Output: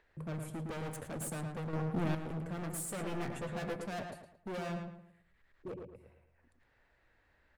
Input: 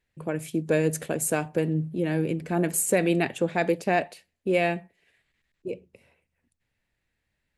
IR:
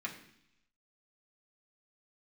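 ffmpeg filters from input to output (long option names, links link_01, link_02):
-filter_complex "[0:a]acrossover=split=310|5600[link_01][link_02][link_03];[link_01]aemphasis=mode=reproduction:type=bsi[link_04];[link_02]acompressor=mode=upward:threshold=-46dB:ratio=2.5[link_05];[link_03]aexciter=amount=1.8:drive=6.5:freq=7700[link_06];[link_04][link_05][link_06]amix=inputs=3:normalize=0,highshelf=frequency=1900:width_type=q:width=1.5:gain=-6.5,asoftclip=type=hard:threshold=-30dB,asettb=1/sr,asplit=3[link_07][link_08][link_09];[link_07]atrim=end=2.974[link_10];[link_08]atrim=start=2.97:end=3.76,asetpts=PTS-STARTPTS,afade=type=in:duration=0.004:curve=qsin,afade=type=out:start_time=0.786:duration=0.004:curve=qsin,asplit=2[link_11][link_12];[link_12]adelay=14,volume=-4dB[link_13];[link_11][link_13]amix=inputs=2:normalize=0,atrim=end_sample=34839[link_14];[link_09]atrim=start=3.756[link_15];[link_10][link_14]acrossfade=duration=0.004:curve1=hsin:curve2=qsin[link_16];[link_16][link_15]acrossfade=duration=0.004:curve1=qsin:curve2=hsin,asplit=2[link_17][link_18];[link_18]adelay=111,lowpass=frequency=2900:poles=1,volume=-4.5dB,asplit=2[link_19][link_20];[link_20]adelay=111,lowpass=frequency=2900:poles=1,volume=0.36,asplit=2[link_21][link_22];[link_22]adelay=111,lowpass=frequency=2900:poles=1,volume=0.36,asplit=2[link_23][link_24];[link_24]adelay=111,lowpass=frequency=2900:poles=1,volume=0.36,asplit=2[link_25][link_26];[link_26]adelay=111,lowpass=frequency=2900:poles=1,volume=0.36[link_27];[link_17][link_19][link_21][link_23][link_25][link_27]amix=inputs=6:normalize=0,asettb=1/sr,asplit=3[link_28][link_29][link_30];[link_28]atrim=end=1.734[link_31];[link_29]atrim=start=1.73:end=2.15,asetpts=PTS-STARTPTS,afade=type=in:duration=0.004:curve=qsin,afade=type=out:start_time=0.416:duration=0.004:curve=qsin,acontrast=79[link_32];[link_30]atrim=start=2.146[link_33];[link_31][link_32]acrossfade=duration=0.004:curve1=hsin:curve2=qsin[link_34];[link_34][link_33]acrossfade=duration=0.004:curve1=qsin:curve2=hsin,volume=-8.5dB"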